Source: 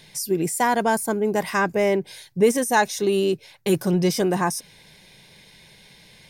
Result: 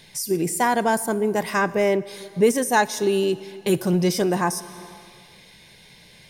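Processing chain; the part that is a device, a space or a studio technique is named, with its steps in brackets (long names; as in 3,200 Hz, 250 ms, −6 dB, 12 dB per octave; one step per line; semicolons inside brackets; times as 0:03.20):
compressed reverb return (on a send at −7 dB: convolution reverb RT60 1.7 s, pre-delay 6 ms + downward compressor 10 to 1, threshold −27 dBFS, peak gain reduction 13.5 dB)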